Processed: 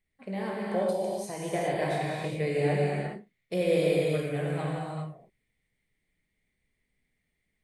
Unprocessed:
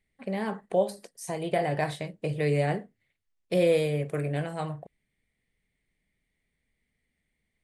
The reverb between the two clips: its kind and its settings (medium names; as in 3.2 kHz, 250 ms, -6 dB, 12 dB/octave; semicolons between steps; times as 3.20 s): gated-style reverb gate 440 ms flat, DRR -4.5 dB; trim -5.5 dB